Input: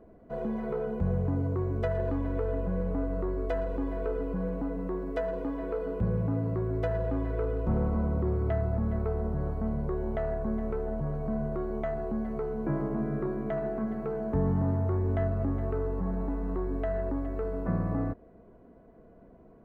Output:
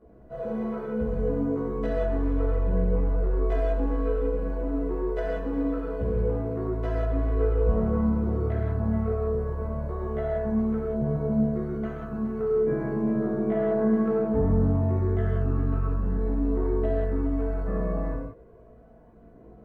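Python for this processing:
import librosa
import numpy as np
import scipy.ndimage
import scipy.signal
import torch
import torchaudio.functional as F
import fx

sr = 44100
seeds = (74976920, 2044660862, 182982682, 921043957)

y = fx.chorus_voices(x, sr, voices=2, hz=0.18, base_ms=16, depth_ms=2.1, mix_pct=60)
y = fx.rev_gated(y, sr, seeds[0], gate_ms=210, shape='flat', drr_db=-4.5)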